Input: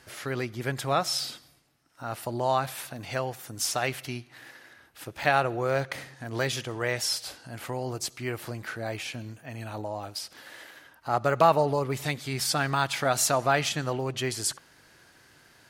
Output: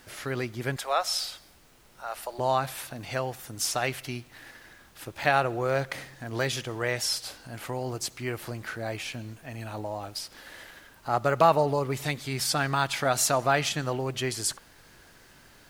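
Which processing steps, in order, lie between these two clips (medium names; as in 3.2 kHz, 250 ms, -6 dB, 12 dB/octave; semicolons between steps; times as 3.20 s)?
0.76–2.39 s: high-pass 500 Hz 24 dB/octave; added noise pink -58 dBFS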